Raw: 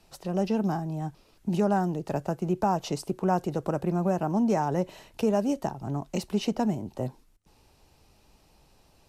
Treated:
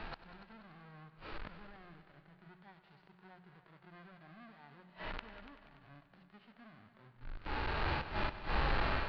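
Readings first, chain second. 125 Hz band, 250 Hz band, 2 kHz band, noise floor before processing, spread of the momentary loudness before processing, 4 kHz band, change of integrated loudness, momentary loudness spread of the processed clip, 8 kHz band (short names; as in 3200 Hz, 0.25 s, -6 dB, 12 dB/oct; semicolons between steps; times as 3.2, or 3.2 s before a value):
-14.5 dB, -23.0 dB, +1.0 dB, -62 dBFS, 9 LU, -4.5 dB, -11.5 dB, 22 LU, under -30 dB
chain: half-waves squared off; Chebyshev low-pass 4500 Hz, order 5; bell 1500 Hz +13 dB 1.7 oct; notches 60/120/180 Hz; AGC gain up to 15 dB; limiter -12 dBFS, peak gain reduction 11.5 dB; compressor 1.5:1, threshold -40 dBFS, peak gain reduction 8 dB; flipped gate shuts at -28 dBFS, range -36 dB; harmonic-percussive split percussive -17 dB; multi-head echo 96 ms, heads all three, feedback 49%, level -16.5 dB; gain +11.5 dB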